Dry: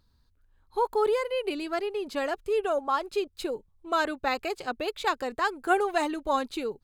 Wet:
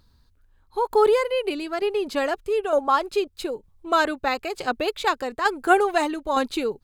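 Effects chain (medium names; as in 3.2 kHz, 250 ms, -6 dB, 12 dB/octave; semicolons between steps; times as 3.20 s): tremolo saw down 1.1 Hz, depth 55%; trim +8 dB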